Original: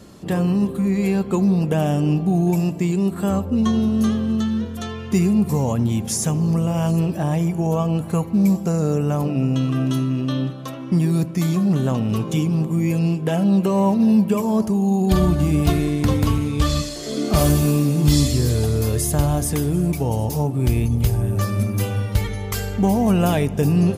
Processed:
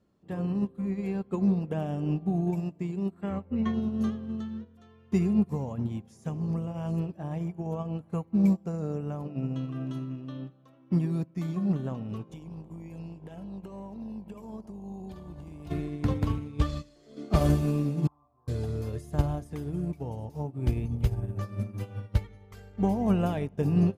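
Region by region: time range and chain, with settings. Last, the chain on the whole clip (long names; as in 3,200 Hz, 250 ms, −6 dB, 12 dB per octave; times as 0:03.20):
0:03.21–0:03.74: low-pass filter 3,600 Hz 6 dB per octave + parametric band 2,100 Hz +15 dB 0.53 octaves
0:12.29–0:15.70: high-shelf EQ 3,400 Hz +7 dB + downward compressor 10 to 1, threshold −20 dBFS + hum with harmonics 50 Hz, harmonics 21, −34 dBFS
0:18.07–0:18.48: formant resonators in series a + flat-topped bell 1,200 Hz +14 dB 1.1 octaves
whole clip: low-pass filter 2,000 Hz 6 dB per octave; expander for the loud parts 2.5 to 1, over −28 dBFS; level −3.5 dB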